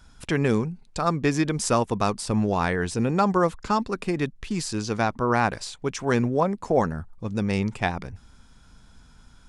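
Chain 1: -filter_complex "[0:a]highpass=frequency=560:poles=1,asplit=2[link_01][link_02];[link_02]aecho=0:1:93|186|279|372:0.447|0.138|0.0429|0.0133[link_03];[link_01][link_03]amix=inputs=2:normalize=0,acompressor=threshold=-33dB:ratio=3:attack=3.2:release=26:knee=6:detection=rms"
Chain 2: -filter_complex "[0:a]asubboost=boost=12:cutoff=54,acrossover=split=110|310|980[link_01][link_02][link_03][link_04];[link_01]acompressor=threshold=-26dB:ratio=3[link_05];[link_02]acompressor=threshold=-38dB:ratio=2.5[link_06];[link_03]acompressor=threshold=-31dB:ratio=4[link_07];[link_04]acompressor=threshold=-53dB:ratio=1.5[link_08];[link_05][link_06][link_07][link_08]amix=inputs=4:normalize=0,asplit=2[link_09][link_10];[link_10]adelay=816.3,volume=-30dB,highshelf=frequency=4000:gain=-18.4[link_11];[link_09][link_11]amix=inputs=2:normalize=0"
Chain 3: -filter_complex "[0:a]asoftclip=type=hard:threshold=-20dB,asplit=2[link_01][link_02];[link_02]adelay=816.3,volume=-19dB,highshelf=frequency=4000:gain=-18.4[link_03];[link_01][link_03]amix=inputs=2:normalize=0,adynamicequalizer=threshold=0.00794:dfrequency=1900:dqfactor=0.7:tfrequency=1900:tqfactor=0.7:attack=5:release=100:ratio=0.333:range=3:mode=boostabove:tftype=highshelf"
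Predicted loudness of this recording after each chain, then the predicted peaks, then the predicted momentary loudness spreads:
−35.0, −31.5, −26.5 LKFS; −18.0, −13.5, −12.5 dBFS; 5, 11, 7 LU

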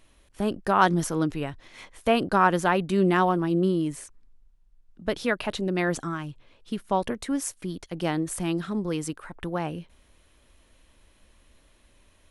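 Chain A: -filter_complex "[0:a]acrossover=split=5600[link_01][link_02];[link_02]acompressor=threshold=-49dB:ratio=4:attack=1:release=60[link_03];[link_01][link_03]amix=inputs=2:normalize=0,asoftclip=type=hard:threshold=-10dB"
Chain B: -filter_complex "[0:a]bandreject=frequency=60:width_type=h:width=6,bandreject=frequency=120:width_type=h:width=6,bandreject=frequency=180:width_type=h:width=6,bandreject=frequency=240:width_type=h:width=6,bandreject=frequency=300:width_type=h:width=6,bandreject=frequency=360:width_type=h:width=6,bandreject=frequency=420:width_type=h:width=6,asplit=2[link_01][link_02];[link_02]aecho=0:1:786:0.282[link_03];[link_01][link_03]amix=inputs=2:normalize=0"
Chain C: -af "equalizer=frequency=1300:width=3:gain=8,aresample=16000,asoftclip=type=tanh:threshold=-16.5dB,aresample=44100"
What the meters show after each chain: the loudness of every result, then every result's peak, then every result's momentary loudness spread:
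−26.5, −27.0, −27.5 LKFS; −10.0, −6.0, −15.5 dBFS; 15, 16, 14 LU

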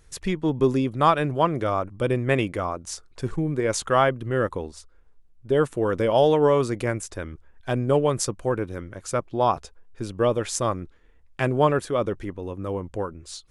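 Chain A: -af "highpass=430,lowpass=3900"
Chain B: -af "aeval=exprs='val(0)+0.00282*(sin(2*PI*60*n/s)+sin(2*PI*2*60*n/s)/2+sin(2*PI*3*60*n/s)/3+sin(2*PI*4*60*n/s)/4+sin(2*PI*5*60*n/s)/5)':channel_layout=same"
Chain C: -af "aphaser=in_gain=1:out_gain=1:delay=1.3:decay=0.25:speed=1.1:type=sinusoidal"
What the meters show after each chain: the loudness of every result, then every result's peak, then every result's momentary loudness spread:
−26.5, −24.5, −24.0 LKFS; −5.5, −6.0, −6.5 dBFS; 17, 14, 13 LU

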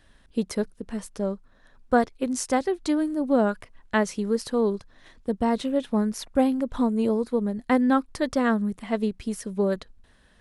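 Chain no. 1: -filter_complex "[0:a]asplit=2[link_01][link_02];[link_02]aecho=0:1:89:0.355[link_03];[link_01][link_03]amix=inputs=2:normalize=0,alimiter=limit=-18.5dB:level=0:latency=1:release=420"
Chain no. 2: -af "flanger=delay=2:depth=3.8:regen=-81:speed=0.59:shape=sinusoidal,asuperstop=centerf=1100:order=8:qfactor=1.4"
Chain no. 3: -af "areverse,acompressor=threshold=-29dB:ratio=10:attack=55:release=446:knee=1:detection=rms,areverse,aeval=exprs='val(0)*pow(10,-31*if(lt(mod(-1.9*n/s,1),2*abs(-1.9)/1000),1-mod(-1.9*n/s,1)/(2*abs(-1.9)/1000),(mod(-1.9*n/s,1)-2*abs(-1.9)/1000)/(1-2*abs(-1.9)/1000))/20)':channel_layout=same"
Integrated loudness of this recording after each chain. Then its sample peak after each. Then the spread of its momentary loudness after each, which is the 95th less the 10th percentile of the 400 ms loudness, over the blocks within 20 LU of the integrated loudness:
−30.5, −31.0, −43.0 LKFS; −18.5, −15.0, −18.5 dBFS; 8, 9, 12 LU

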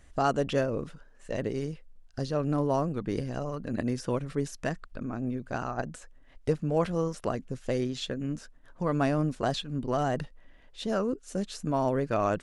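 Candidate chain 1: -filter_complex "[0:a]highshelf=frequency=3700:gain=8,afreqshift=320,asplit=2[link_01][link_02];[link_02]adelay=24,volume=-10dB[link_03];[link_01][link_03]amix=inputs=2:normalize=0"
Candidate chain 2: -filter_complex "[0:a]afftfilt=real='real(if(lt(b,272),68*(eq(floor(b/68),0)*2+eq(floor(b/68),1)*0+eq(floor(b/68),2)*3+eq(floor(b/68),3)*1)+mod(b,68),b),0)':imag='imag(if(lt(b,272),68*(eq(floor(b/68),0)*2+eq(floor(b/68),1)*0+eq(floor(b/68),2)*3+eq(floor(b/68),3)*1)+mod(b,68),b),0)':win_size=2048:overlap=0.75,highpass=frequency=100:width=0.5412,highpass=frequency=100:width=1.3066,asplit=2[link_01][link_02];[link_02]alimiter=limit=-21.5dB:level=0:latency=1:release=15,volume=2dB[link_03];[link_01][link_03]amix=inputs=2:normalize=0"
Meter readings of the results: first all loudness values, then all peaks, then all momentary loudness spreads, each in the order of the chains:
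−30.0, −22.5 LKFS; −10.0, −9.5 dBFS; 11, 10 LU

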